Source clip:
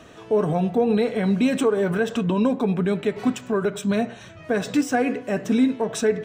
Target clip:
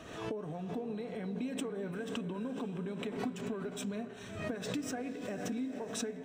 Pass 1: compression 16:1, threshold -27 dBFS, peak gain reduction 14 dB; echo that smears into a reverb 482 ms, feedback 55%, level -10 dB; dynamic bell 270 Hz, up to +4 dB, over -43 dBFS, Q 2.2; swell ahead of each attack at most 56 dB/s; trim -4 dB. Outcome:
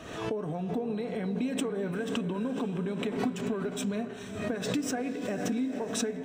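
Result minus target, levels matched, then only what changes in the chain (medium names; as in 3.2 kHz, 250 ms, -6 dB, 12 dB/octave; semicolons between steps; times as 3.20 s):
compression: peak gain reduction -6.5 dB
change: compression 16:1, threshold -34 dBFS, peak gain reduction 20.5 dB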